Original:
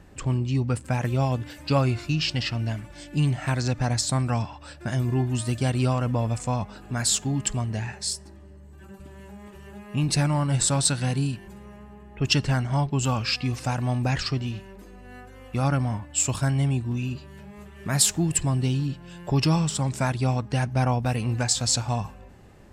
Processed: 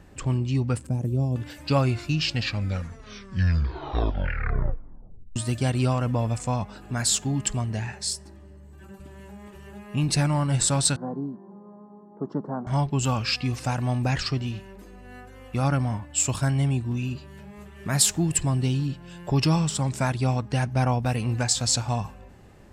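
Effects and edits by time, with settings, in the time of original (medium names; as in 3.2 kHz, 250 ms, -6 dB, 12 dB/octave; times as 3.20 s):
0.87–1.36 s: FFT filter 360 Hz 0 dB, 1.7 kHz -26 dB, 9.5 kHz -7 dB
2.23 s: tape stop 3.13 s
10.96–12.67 s: elliptic band-pass 180–1100 Hz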